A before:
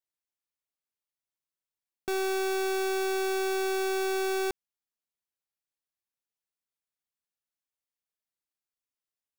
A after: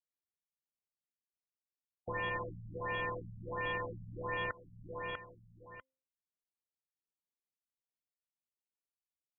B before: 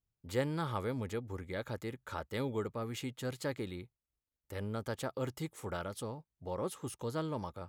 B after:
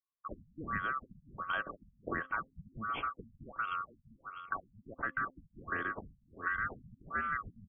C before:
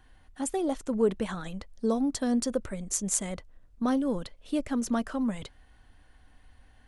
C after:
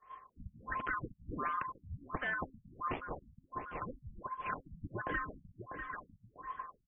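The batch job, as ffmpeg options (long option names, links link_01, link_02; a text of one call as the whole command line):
ffmpeg -i in.wav -filter_complex "[0:a]afftfilt=real='real(if(lt(b,960),b+48*(1-2*mod(floor(b/48),2)),b),0)':imag='imag(if(lt(b,960),b+48*(1-2*mod(floor(b/48),2)),b),0)':win_size=2048:overlap=0.75,acrossover=split=170|3700[link_01][link_02][link_03];[link_03]acrusher=samples=28:mix=1:aa=0.000001[link_04];[link_01][link_02][link_04]amix=inputs=3:normalize=0,afftfilt=real='re*lt(hypot(re,im),0.178)':imag='im*lt(hypot(re,im),0.178)':win_size=1024:overlap=0.75,aemphasis=mode=production:type=75fm,agate=range=-33dB:threshold=-45dB:ratio=3:detection=peak,aecho=1:1:645|1290:0.1|0.027,acompressor=threshold=-47dB:ratio=10,bandreject=frequency=263.2:width_type=h:width=4,bandreject=frequency=526.4:width_type=h:width=4,afftfilt=real='re*lt(b*sr/1024,210*pow(3500/210,0.5+0.5*sin(2*PI*1.4*pts/sr)))':imag='im*lt(b*sr/1024,210*pow(3500/210,0.5+0.5*sin(2*PI*1.4*pts/sr)))':win_size=1024:overlap=0.75,volume=15dB" out.wav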